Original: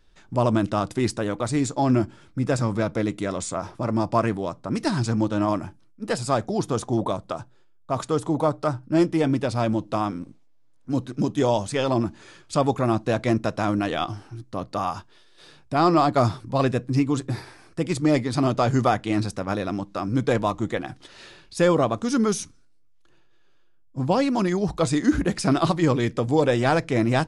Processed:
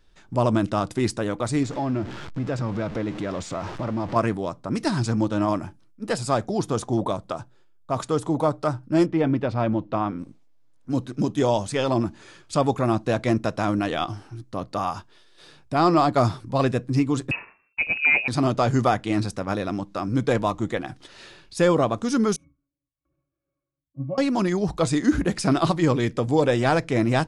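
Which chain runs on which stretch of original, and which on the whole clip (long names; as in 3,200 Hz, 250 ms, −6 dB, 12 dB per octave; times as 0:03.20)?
0:01.63–0:04.16: converter with a step at zero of −30.5 dBFS + downward compressor 2 to 1, threshold −26 dBFS + high-frequency loss of the air 120 metres
0:09.06–0:10.19: low-pass filter 2,700 Hz + de-essing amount 85%
0:17.31–0:18.28: downward expander −40 dBFS + voice inversion scrambler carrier 2,700 Hz
0:22.36–0:24.18: parametric band 4,300 Hz −12.5 dB 1.2 octaves + resonances in every octave C#, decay 0.14 s
whole clip: no processing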